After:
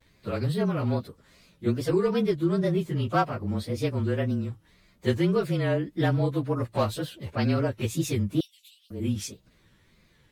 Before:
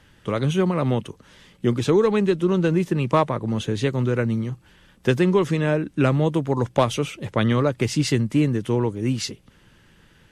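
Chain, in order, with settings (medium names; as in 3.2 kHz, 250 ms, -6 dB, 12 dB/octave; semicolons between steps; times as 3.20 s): frequency axis rescaled in octaves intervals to 109%; 8.40–8.91 s: Chebyshev high-pass 2.8 kHz, order 5; wow and flutter 140 cents; trim -3.5 dB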